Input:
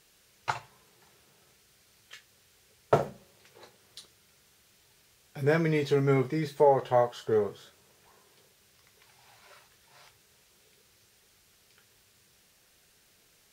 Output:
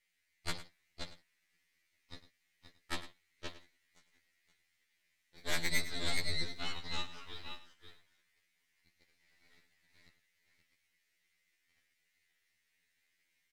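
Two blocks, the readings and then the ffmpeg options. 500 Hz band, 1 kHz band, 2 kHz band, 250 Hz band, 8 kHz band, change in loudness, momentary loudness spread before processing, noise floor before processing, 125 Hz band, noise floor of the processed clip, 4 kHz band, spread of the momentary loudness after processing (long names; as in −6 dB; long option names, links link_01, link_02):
−24.5 dB, −18.0 dB, −2.5 dB, −17.0 dB, can't be measured, −12.5 dB, 12 LU, −64 dBFS, −17.0 dB, −80 dBFS, +6.5 dB, 21 LU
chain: -filter_complex "[0:a]acrossover=split=3100[link_01][link_02];[link_02]acompressor=threshold=-58dB:ratio=4:attack=1:release=60[link_03];[link_01][link_03]amix=inputs=2:normalize=0,highpass=frequency=2000:width_type=q:width=6.7,asplit=2[link_04][link_05];[link_05]aecho=0:1:525:0.562[link_06];[link_04][link_06]amix=inputs=2:normalize=0,aeval=exprs='0.211*(cos(1*acos(clip(val(0)/0.211,-1,1)))-cos(1*PI/2))+0.0596*(cos(3*acos(clip(val(0)/0.211,-1,1)))-cos(3*PI/2))+0.0376*(cos(8*acos(clip(val(0)/0.211,-1,1)))-cos(8*PI/2))':channel_layout=same,asplit=2[link_07][link_08];[link_08]aecho=0:1:103:0.188[link_09];[link_07][link_09]amix=inputs=2:normalize=0,afftfilt=real='re*2*eq(mod(b,4),0)':imag='im*2*eq(mod(b,4),0)':win_size=2048:overlap=0.75,volume=-3dB"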